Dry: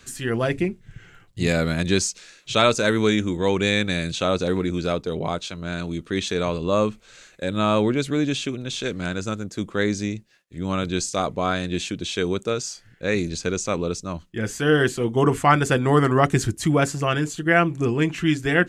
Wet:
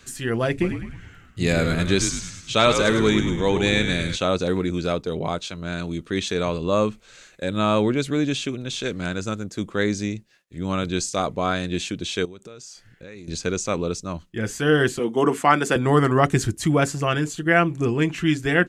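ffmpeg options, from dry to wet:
ffmpeg -i in.wav -filter_complex "[0:a]asplit=3[link_01][link_02][link_03];[link_01]afade=type=out:start_time=0.6:duration=0.02[link_04];[link_02]asplit=7[link_05][link_06][link_07][link_08][link_09][link_10][link_11];[link_06]adelay=104,afreqshift=-71,volume=-7.5dB[link_12];[link_07]adelay=208,afreqshift=-142,volume=-13.2dB[link_13];[link_08]adelay=312,afreqshift=-213,volume=-18.9dB[link_14];[link_09]adelay=416,afreqshift=-284,volume=-24.5dB[link_15];[link_10]adelay=520,afreqshift=-355,volume=-30.2dB[link_16];[link_11]adelay=624,afreqshift=-426,volume=-35.9dB[link_17];[link_05][link_12][link_13][link_14][link_15][link_16][link_17]amix=inputs=7:normalize=0,afade=type=in:start_time=0.6:duration=0.02,afade=type=out:start_time=4.15:duration=0.02[link_18];[link_03]afade=type=in:start_time=4.15:duration=0.02[link_19];[link_04][link_18][link_19]amix=inputs=3:normalize=0,asettb=1/sr,asplit=3[link_20][link_21][link_22];[link_20]atrim=end=12.254[link_23];[link_21]atrim=start=12.25:end=13.28,asetpts=PTS-STARTPTS,afade=type=in:duration=0.004:curve=qsin,afade=type=out:start_time=1.026:duration=0.004:curve=qsin,acompressor=threshold=-38dB:ratio=6:attack=3.2:release=140:knee=1:detection=peak[link_24];[link_22]atrim=start=13.276[link_25];[link_23][link_24]acrossfade=duration=0.004:curve1=hsin:curve2=qsin[link_26];[link_26][link_25]acrossfade=duration=0.004:curve1=qsin:curve2=hsin,asettb=1/sr,asplit=3[link_27][link_28][link_29];[link_27]atrim=end=14.994[link_30];[link_28]atrim=start=14.99:end=15.76,asetpts=PTS-STARTPTS,afade=type=in:duration=0.004:curve=qsin,afade=type=out:start_time=0.766:duration=0.004:curve=qsin,highpass=frequency=180:width=0.5412,highpass=frequency=180:width=1.3066[link_31];[link_29]atrim=start=15.756[link_32];[link_30][link_31]acrossfade=duration=0.004:curve1=hsin:curve2=qsin[link_33];[link_33][link_32]acrossfade=duration=0.004:curve1=qsin:curve2=hsin" out.wav

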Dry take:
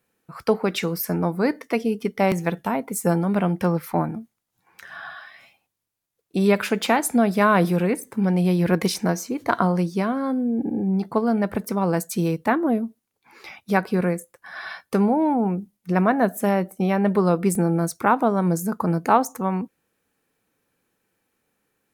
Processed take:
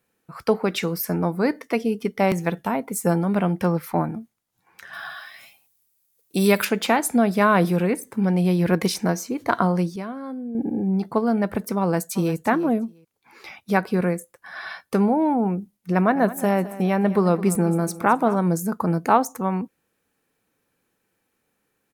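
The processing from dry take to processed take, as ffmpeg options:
ffmpeg -i in.wav -filter_complex "[0:a]asettb=1/sr,asplit=3[link_01][link_02][link_03];[link_01]atrim=end=4.934[link_04];[link_02]atrim=start=4.93:end=6.65,asetpts=PTS-STARTPTS,afade=type=in:duration=0.004:curve=qsin,afade=type=out:start_time=1.716:duration=0.004:curve=qsin,aemphasis=mode=production:type=75kf[link_05];[link_03]atrim=start=6.646[link_06];[link_04][link_05]acrossfade=duration=0.004:curve1=hsin:curve2=qsin[link_07];[link_07][link_06]acrossfade=duration=0.004:curve1=qsin:curve2=hsin,asplit=2[link_08][link_09];[link_09]afade=type=in:start_time=11.8:duration=0.01,afade=type=out:start_time=12.34:duration=0.01,aecho=0:1:350|700:0.188365|0.0282547[link_10];[link_08][link_10]amix=inputs=2:normalize=0,asettb=1/sr,asplit=3[link_11][link_12][link_13];[link_11]atrim=end=15.944[link_14];[link_12]atrim=start=15.94:end=18.4,asetpts=PTS-STARTPTS,afade=type=in:duration=0.004:curve=qsin,afade=type=out:start_time=2.456:duration=0.004:curve=qsin,aecho=1:1:212|424|636|848:0.158|0.0697|0.0307|0.0135,atrim=end_sample=108486[link_15];[link_13]atrim=start=18.396[link_16];[link_14][link_15]acrossfade=duration=0.004:curve1=hsin:curve2=qsin[link_17];[link_17][link_16]acrossfade=duration=0.004:curve1=qsin:curve2=hsin,asplit=3[link_18][link_19][link_20];[link_18]atrim=end=9.962[link_21];[link_19]atrim=start=9.958:end=10.552,asetpts=PTS-STARTPTS,volume=-8.5dB[link_22];[link_20]atrim=start=10.548[link_23];[link_21][link_22]acrossfade=duration=0.004:curve1=hsin:curve2=hsin[link_24];[link_24][link_23]acrossfade=duration=0.004:curve1=hsin:curve2=hsin" out.wav

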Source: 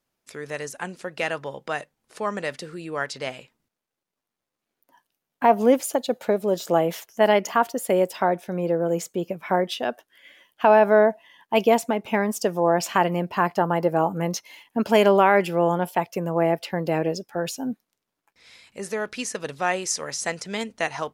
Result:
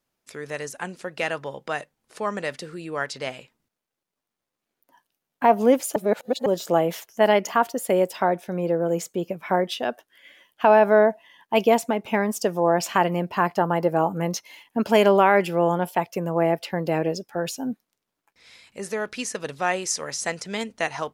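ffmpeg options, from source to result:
ffmpeg -i in.wav -filter_complex "[0:a]asplit=3[link_01][link_02][link_03];[link_01]atrim=end=5.962[link_04];[link_02]atrim=start=5.958:end=6.462,asetpts=PTS-STARTPTS,areverse[link_05];[link_03]atrim=start=6.458[link_06];[link_04][link_05]acrossfade=duration=0.004:curve1=hsin:curve2=hsin[link_07];[link_07][link_06]acrossfade=duration=0.004:curve1=hsin:curve2=hsin" out.wav

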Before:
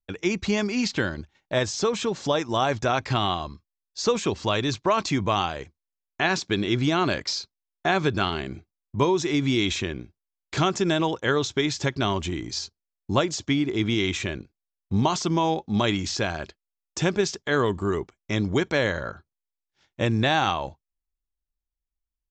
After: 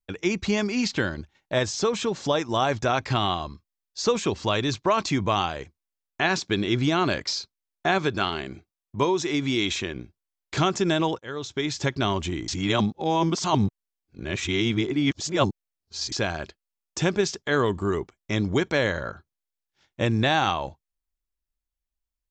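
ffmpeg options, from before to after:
ffmpeg -i in.wav -filter_complex "[0:a]asettb=1/sr,asplit=3[link_01][link_02][link_03];[link_01]atrim=end=7.984[link_04];[link_02]atrim=start=7.98:end=9.96,asetpts=PTS-STARTPTS,afade=type=in:duration=0.004:curve=qsin,afade=type=out:start_time=1.976:duration=0.004:curve=qsin,lowshelf=frequency=200:gain=-6.5[link_05];[link_03]atrim=start=9.956[link_06];[link_04][link_05]acrossfade=duration=0.004:curve1=hsin:curve2=qsin[link_07];[link_07][link_06]acrossfade=duration=0.004:curve1=qsin:curve2=hsin,asplit=4[link_08][link_09][link_10][link_11];[link_08]atrim=end=11.19,asetpts=PTS-STARTPTS,afade=type=out:start_time=11.186:duration=0.004:curve=hsin:silence=0.0891251[link_12];[link_09]atrim=start=11.19:end=12.482,asetpts=PTS-STARTPTS,afade=type=in:duration=0.66:silence=0.0891251[link_13];[link_10]atrim=start=12.478:end=16.122,asetpts=PTS-STARTPTS,areverse[link_14];[link_11]atrim=start=16.118[link_15];[link_12][link_13]concat=n=2:v=0:a=1[link_16];[link_16][link_14]acrossfade=duration=0.004:curve1=hsin:curve2=hsin[link_17];[link_17][link_15]acrossfade=duration=0.004:curve1=hsin:curve2=hsin" out.wav

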